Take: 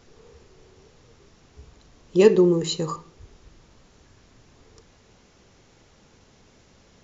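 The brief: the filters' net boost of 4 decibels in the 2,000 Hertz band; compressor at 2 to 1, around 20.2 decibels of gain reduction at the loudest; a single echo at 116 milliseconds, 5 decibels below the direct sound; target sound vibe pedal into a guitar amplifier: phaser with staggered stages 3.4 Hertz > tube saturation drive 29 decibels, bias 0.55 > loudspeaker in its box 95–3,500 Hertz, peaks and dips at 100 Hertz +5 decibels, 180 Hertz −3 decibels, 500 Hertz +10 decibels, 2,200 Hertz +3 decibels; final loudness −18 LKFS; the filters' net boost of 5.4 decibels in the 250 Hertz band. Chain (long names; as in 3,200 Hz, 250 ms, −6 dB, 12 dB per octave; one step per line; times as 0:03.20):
parametric band 250 Hz +9 dB
parametric band 2,000 Hz +3.5 dB
downward compressor 2 to 1, threshold −45 dBFS
single-tap delay 116 ms −5 dB
phaser with staggered stages 3.4 Hz
tube saturation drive 29 dB, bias 0.55
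loudspeaker in its box 95–3,500 Hz, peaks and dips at 100 Hz +5 dB, 180 Hz −3 dB, 500 Hz +10 dB, 2,200 Hz +3 dB
level +22 dB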